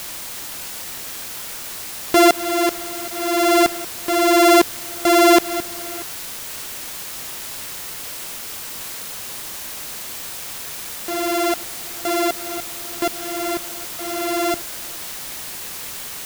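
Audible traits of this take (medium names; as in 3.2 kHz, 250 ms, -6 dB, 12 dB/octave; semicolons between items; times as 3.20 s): a buzz of ramps at a fixed pitch in blocks of 64 samples; tremolo saw up 1.3 Hz, depth 100%; a quantiser's noise floor 6-bit, dither triangular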